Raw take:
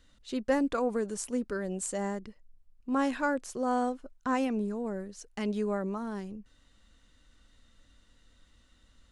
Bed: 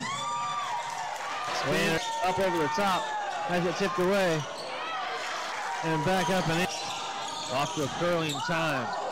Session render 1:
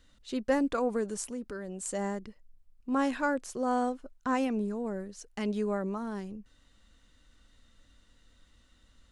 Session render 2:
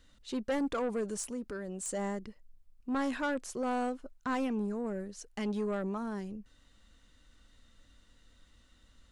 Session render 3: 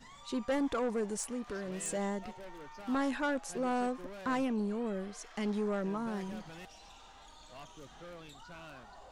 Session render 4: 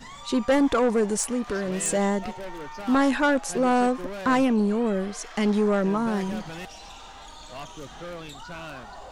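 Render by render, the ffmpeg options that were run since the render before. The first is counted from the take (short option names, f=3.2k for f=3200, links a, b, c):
-filter_complex "[0:a]asettb=1/sr,asplit=3[a][b][c];[a]atrim=end=1.324[d];[b]atrim=start=1.32:end=1.86,asetpts=PTS-STARTPTS,afade=t=in:d=0.004:c=qsin,afade=t=out:st=0.536:d=0.004:c=qsin,acompressor=threshold=-39dB:ratio=2:attack=3.2:release=140:knee=1:detection=peak[e];[c]atrim=start=1.856[f];[d][e]acrossfade=d=0.004:c1=hsin:c2=qsin[g];[g][f]acrossfade=d=0.004:c1=qsin:c2=hsin"
-af "asoftclip=type=tanh:threshold=-27dB"
-filter_complex "[1:a]volume=-22dB[a];[0:a][a]amix=inputs=2:normalize=0"
-af "volume=11.5dB"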